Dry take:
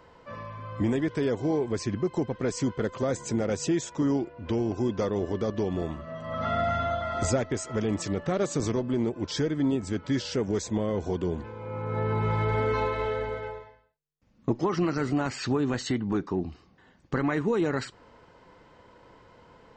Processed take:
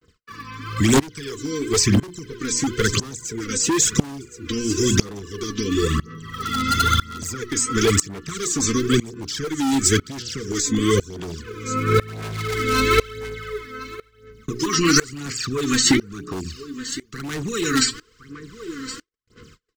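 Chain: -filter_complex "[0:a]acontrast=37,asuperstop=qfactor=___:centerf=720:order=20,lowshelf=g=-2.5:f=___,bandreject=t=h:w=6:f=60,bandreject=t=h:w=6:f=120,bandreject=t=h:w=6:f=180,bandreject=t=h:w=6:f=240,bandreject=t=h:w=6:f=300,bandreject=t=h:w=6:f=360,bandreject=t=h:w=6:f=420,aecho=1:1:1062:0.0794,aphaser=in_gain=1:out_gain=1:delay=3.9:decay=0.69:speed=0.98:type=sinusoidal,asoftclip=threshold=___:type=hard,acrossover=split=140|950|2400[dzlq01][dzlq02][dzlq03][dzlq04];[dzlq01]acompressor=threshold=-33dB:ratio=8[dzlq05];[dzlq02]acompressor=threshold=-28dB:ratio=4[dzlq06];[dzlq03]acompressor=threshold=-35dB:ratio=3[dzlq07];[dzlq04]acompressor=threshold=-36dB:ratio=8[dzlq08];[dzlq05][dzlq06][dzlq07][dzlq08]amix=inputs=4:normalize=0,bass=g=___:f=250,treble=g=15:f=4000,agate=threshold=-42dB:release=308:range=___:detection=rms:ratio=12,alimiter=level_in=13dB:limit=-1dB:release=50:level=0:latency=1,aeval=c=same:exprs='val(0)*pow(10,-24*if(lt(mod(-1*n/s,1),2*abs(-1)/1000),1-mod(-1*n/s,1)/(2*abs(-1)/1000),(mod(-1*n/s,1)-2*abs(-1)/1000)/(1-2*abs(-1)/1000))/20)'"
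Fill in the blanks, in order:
1.2, 260, -16dB, 1, -43dB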